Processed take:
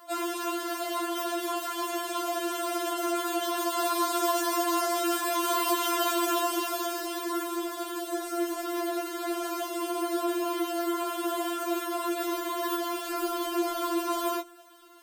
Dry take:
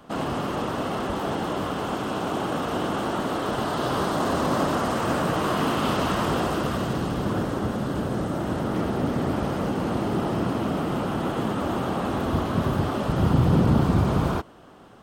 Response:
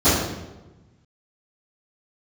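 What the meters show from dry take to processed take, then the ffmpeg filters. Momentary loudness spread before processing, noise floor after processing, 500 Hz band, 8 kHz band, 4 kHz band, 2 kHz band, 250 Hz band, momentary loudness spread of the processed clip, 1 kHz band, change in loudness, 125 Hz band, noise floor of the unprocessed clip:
6 LU, -38 dBFS, -3.5 dB, +7.0 dB, +0.5 dB, -3.5 dB, -6.5 dB, 6 LU, -2.0 dB, -4.0 dB, under -40 dB, -30 dBFS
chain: -af "aemphasis=mode=production:type=bsi,afftfilt=real='re*4*eq(mod(b,16),0)':imag='im*4*eq(mod(b,16),0)':win_size=2048:overlap=0.75"

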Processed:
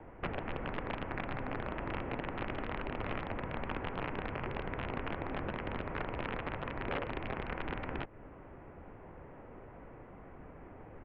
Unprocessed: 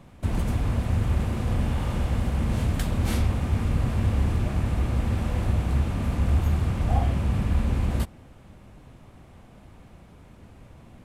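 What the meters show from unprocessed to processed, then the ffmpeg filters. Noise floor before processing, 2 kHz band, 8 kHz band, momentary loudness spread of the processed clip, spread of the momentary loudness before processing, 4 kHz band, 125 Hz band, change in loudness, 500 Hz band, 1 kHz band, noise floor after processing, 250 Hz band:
-50 dBFS, -1.0 dB, under -35 dB, 14 LU, 3 LU, -8.0 dB, -20.0 dB, -13.5 dB, -4.0 dB, -3.5 dB, -53 dBFS, -12.0 dB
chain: -filter_complex "[0:a]acrossover=split=150 2200:gain=0.158 1 0.0708[s0][s1][s2];[s0][s1][s2]amix=inputs=3:normalize=0,acrossover=split=710|1500[s3][s4][s5];[s3]acompressor=threshold=0.0112:ratio=4[s6];[s4]acompressor=threshold=0.00178:ratio=4[s7];[s5]acompressor=threshold=0.00158:ratio=4[s8];[s6][s7][s8]amix=inputs=3:normalize=0,aresample=16000,aeval=exprs='(mod(42.2*val(0)+1,2)-1)/42.2':c=same,aresample=44100,highpass=f=240:t=q:w=0.5412,highpass=f=240:t=q:w=1.307,lowpass=f=3100:t=q:w=0.5176,lowpass=f=3100:t=q:w=0.7071,lowpass=f=3100:t=q:w=1.932,afreqshift=-230,volume=1.88"

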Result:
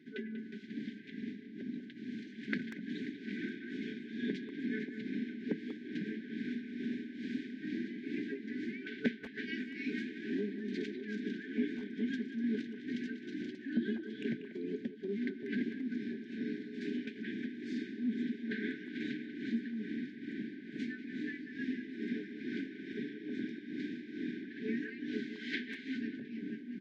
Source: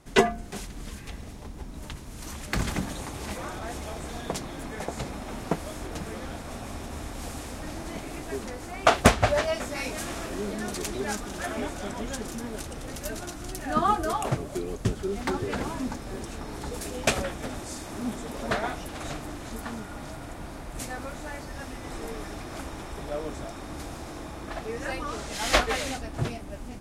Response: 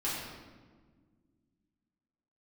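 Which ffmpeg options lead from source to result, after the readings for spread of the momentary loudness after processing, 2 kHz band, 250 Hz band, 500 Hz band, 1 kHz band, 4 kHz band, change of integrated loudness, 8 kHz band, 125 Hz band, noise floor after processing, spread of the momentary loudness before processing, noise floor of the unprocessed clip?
6 LU, -10.0 dB, -1.5 dB, -13.5 dB, under -40 dB, -15.0 dB, -8.5 dB, under -30 dB, -16.0 dB, -49 dBFS, 14 LU, -40 dBFS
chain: -filter_complex "[0:a]afftfilt=real='re*(1-between(b*sr/4096,440,1500))':imag='im*(1-between(b*sr/4096,440,1500))':win_size=4096:overlap=0.75,acompressor=threshold=0.0158:ratio=5,tremolo=f=2.3:d=0.72,highpass=f=220:w=0.5412,highpass=f=220:w=1.3066,equalizer=f=230:t=q:w=4:g=8,equalizer=f=370:t=q:w=4:g=-7,equalizer=f=550:t=q:w=4:g=7,equalizer=f=1100:t=q:w=4:g=-5,equalizer=f=1800:t=q:w=4:g=-4,equalizer=f=2700:t=q:w=4:g=-10,lowpass=f=3000:w=0.5412,lowpass=f=3000:w=1.3066,asplit=2[s0][s1];[s1]adelay=190,highpass=300,lowpass=3400,asoftclip=type=hard:threshold=0.0133,volume=0.355[s2];[s0][s2]amix=inputs=2:normalize=0,volume=2.11"

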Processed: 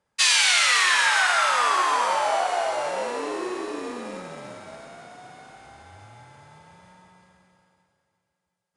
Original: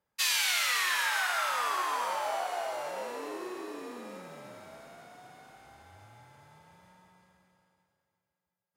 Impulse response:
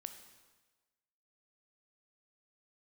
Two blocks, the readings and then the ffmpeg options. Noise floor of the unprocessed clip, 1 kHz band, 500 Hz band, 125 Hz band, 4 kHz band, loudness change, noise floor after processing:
under -85 dBFS, +9.5 dB, +9.5 dB, +8.0 dB, +9.5 dB, +9.5 dB, -79 dBFS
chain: -filter_complex "[0:a]bandreject=f=314.1:t=h:w=4,bandreject=f=628.2:t=h:w=4,bandreject=f=942.3:t=h:w=4,bandreject=f=1256.4:t=h:w=4,bandreject=f=1570.5:t=h:w=4,bandreject=f=1884.6:t=h:w=4,bandreject=f=2198.7:t=h:w=4,bandreject=f=2512.8:t=h:w=4,bandreject=f=2826.9:t=h:w=4,bandreject=f=3141:t=h:w=4,bandreject=f=3455.1:t=h:w=4,asplit=2[s0][s1];[s1]aeval=exprs='val(0)*gte(abs(val(0)),0.00794)':c=same,volume=0.282[s2];[s0][s2]amix=inputs=2:normalize=0,aresample=22050,aresample=44100,volume=2.37"

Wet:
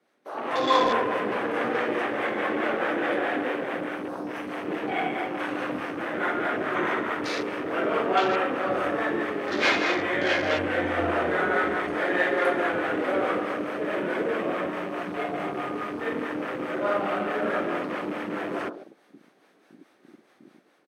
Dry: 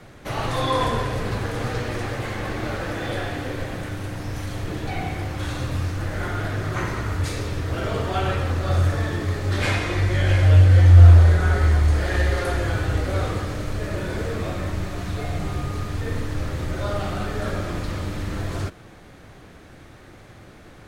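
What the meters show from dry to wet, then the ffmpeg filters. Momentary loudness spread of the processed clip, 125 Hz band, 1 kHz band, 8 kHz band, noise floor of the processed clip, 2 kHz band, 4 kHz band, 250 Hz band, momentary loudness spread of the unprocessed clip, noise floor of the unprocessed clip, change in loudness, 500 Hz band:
8 LU, -26.0 dB, +3.0 dB, -9.5 dB, -62 dBFS, +3.0 dB, -1.0 dB, +1.0 dB, 13 LU, -46 dBFS, -4.5 dB, +3.0 dB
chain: -filter_complex "[0:a]highpass=f=240:w=0.5412,highpass=f=240:w=1.3066,bandreject=f=7100:w=7.7,asplit=2[s0][s1];[s1]adelay=140,highpass=300,lowpass=3400,asoftclip=type=hard:threshold=0.0794,volume=0.447[s2];[s0][s2]amix=inputs=2:normalize=0,dynaudnorm=f=150:g=7:m=2.82,acrossover=split=510[s3][s4];[s3]aeval=exprs='val(0)*(1-0.5/2+0.5/2*cos(2*PI*4.7*n/s))':c=same[s5];[s4]aeval=exprs='val(0)*(1-0.5/2-0.5/2*cos(2*PI*4.7*n/s))':c=same[s6];[s5][s6]amix=inputs=2:normalize=0,afwtdn=0.0316,volume=0.668"

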